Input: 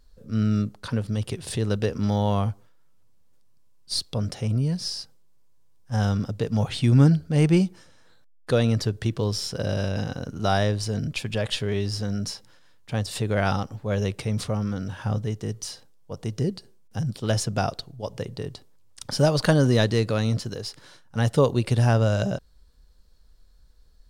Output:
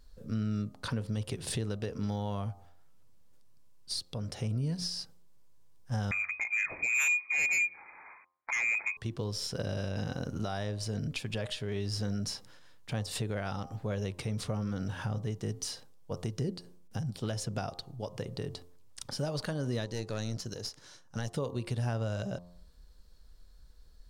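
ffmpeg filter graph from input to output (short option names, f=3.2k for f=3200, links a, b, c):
-filter_complex "[0:a]asettb=1/sr,asplit=3[a][b][c];[a]atrim=end=6.114[d];[b]atrim=start=6.11:end=8.97,asetpts=PTS-STARTPTS,afade=t=in:d=0.004:c=qsin,afade=t=out:st=2.856:d=0.004:c=qsin,highpass=140,lowpass=f=2.2k:t=q:w=0.5098,lowpass=f=2.2k:t=q:w=0.6013,lowpass=f=2.2k:t=q:w=0.9,lowpass=f=2.2k:t=q:w=2.563,afreqshift=-2600,aeval=exprs='0.422*sin(PI/2*2.51*val(0)/0.422)':c=same[e];[c]atrim=start=8.966[f];[d][e]acrossfade=d=0.004:c1=hsin:c2=qsin[g];[g][f]acrossfade=d=0.004:c1=qsin:c2=hsin,asettb=1/sr,asplit=3[h][i][j];[h]atrim=end=19.854[k];[i]atrim=start=19.85:end=21.33,asetpts=PTS-STARTPTS,afade=t=in:d=0.004:c=qsin,afade=t=out:st=1.476:d=0.004:c=qsin,equalizer=f=6.1k:w=2.2:g=9.5,aeval=exprs='(tanh(5.62*val(0)+0.75)-tanh(0.75))/5.62':c=same[l];[j]atrim=start=21.326[m];[k][l]acrossfade=d=0.004:c1=hsin:c2=qsin[n];[n][m]acrossfade=d=0.004:c1=qsin:c2=hsin,bandreject=f=88.02:t=h:w=4,bandreject=f=176.04:t=h:w=4,bandreject=f=264.06:t=h:w=4,bandreject=f=352.08:t=h:w=4,bandreject=f=440.1:t=h:w=4,bandreject=f=528.12:t=h:w=4,bandreject=f=616.14:t=h:w=4,bandreject=f=704.16:t=h:w=4,bandreject=f=792.18:t=h:w=4,bandreject=f=880.2:t=h:w=4,bandreject=f=968.22:t=h:w=4,bandreject=f=1.05624k:t=h:w=4,bandreject=f=1.14426k:t=h:w=4,bandreject=f=1.23228k:t=h:w=4,acompressor=threshold=-32dB:ratio=2.5,alimiter=limit=-24dB:level=0:latency=1:release=378"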